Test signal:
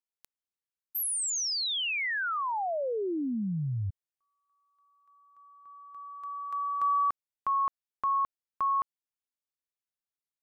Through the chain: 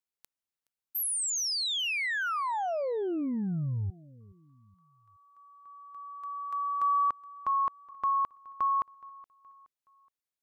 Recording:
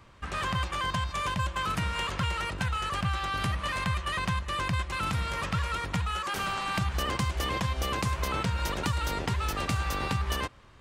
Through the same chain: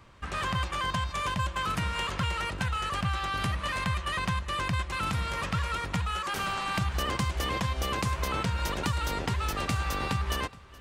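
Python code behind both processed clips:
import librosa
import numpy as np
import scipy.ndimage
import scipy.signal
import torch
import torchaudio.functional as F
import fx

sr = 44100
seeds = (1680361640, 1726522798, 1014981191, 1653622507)

y = fx.echo_feedback(x, sr, ms=421, feedback_pct=43, wet_db=-22)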